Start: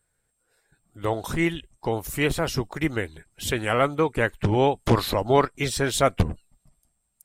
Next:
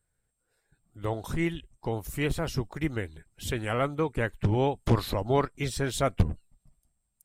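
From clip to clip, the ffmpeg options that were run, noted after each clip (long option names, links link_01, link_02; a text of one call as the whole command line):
ffmpeg -i in.wav -af "lowshelf=frequency=220:gain=7.5,volume=-7.5dB" out.wav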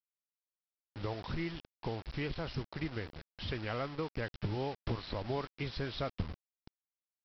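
ffmpeg -i in.wav -af "acompressor=threshold=-38dB:ratio=3,aresample=11025,acrusher=bits=7:mix=0:aa=0.000001,aresample=44100,volume=1dB" out.wav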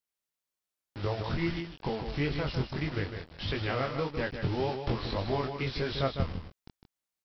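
ffmpeg -i in.wav -af "flanger=delay=19.5:depth=3.9:speed=1.7,aecho=1:1:154:0.422,volume=8.5dB" out.wav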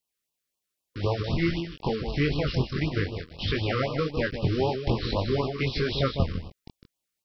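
ffmpeg -i in.wav -af "afftfilt=real='re*(1-between(b*sr/1024,710*pow(1800/710,0.5+0.5*sin(2*PI*3.9*pts/sr))/1.41,710*pow(1800/710,0.5+0.5*sin(2*PI*3.9*pts/sr))*1.41))':imag='im*(1-between(b*sr/1024,710*pow(1800/710,0.5+0.5*sin(2*PI*3.9*pts/sr))/1.41,710*pow(1800/710,0.5+0.5*sin(2*PI*3.9*pts/sr))*1.41))':win_size=1024:overlap=0.75,volume=5.5dB" out.wav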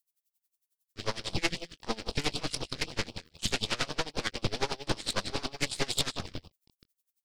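ffmpeg -i in.wav -af "aeval=exprs='0.316*(cos(1*acos(clip(val(0)/0.316,-1,1)))-cos(1*PI/2))+0.112*(cos(8*acos(clip(val(0)/0.316,-1,1)))-cos(8*PI/2))':channel_layout=same,crystalizer=i=4.5:c=0,aeval=exprs='val(0)*pow(10,-22*(0.5-0.5*cos(2*PI*11*n/s))/20)':channel_layout=same,volume=-8dB" out.wav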